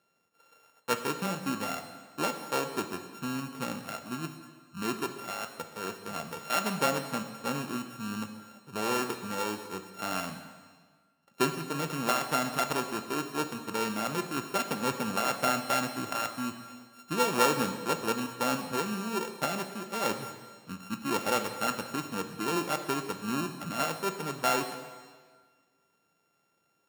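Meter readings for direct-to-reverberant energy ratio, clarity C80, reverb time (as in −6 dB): 6.5 dB, 10.0 dB, 1.6 s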